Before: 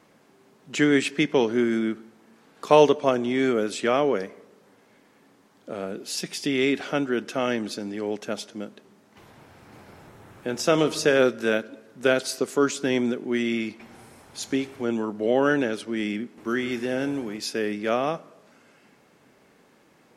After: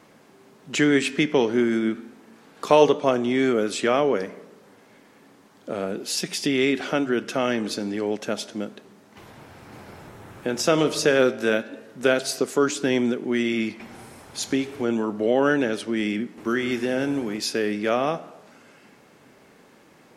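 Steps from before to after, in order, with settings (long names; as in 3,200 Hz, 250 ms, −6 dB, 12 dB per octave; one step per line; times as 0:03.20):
in parallel at 0 dB: downward compressor, threshold −29 dBFS, peak gain reduction 17.5 dB
on the sum: flanger 0.31 Hz, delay 7.3 ms, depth 9.2 ms, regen −90%
level +3.5 dB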